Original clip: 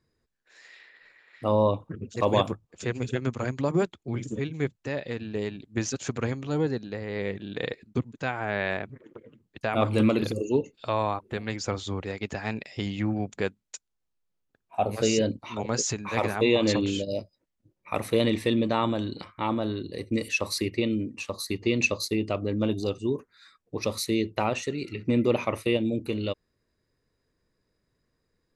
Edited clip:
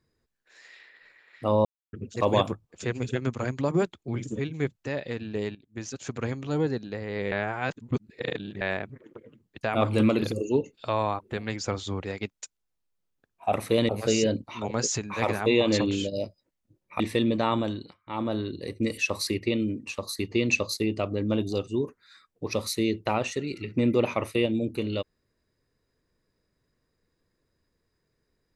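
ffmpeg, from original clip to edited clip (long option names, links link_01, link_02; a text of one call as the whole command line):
ffmpeg -i in.wav -filter_complex "[0:a]asplit=12[link_01][link_02][link_03][link_04][link_05][link_06][link_07][link_08][link_09][link_10][link_11][link_12];[link_01]atrim=end=1.65,asetpts=PTS-STARTPTS,afade=type=out:start_time=1.646:duration=0.004:curve=hsin[link_13];[link_02]atrim=start=1.65:end=1.93,asetpts=PTS-STARTPTS,volume=0[link_14];[link_03]atrim=start=1.93:end=5.55,asetpts=PTS-STARTPTS,afade=type=in:duration=0.004:curve=hsin,afade=type=out:start_time=3.616:duration=0.004:curve=hsin:silence=0.149624[link_15];[link_04]atrim=start=5.55:end=7.322,asetpts=PTS-STARTPTS,afade=type=in:duration=0.91:silence=0.149624[link_16];[link_05]atrim=start=7.318:end=8.612,asetpts=PTS-STARTPTS,areverse[link_17];[link_06]atrim=start=8.608:end=12.302[link_18];[link_07]atrim=start=13.608:end=14.842[link_19];[link_08]atrim=start=17.948:end=18.312[link_20];[link_09]atrim=start=14.838:end=17.952[link_21];[link_10]atrim=start=18.308:end=19.28,asetpts=PTS-STARTPTS,afade=type=out:start_time=0.672:duration=0.3:silence=0.0749894[link_22];[link_11]atrim=start=19.28:end=19.3,asetpts=PTS-STARTPTS,volume=-22.5dB[link_23];[link_12]atrim=start=19.3,asetpts=PTS-STARTPTS,afade=type=in:duration=0.3:silence=0.0749894[link_24];[link_13][link_14][link_15][link_16]concat=n=4:v=0:a=1[link_25];[link_25][link_17]acrossfade=duration=0.004:curve1=hsin:curve2=hsin[link_26];[link_26][link_18]acrossfade=duration=0.004:curve1=hsin:curve2=hsin[link_27];[link_27][link_19]acrossfade=duration=0.004:curve1=hsin:curve2=hsin[link_28];[link_28][link_20]acrossfade=duration=0.004:curve1=hsin:curve2=hsin[link_29];[link_29][link_21]acrossfade=duration=0.004:curve1=hsin:curve2=hsin[link_30];[link_22][link_23][link_24]concat=n=3:v=0:a=1[link_31];[link_30][link_31]acrossfade=duration=0.004:curve1=hsin:curve2=hsin" out.wav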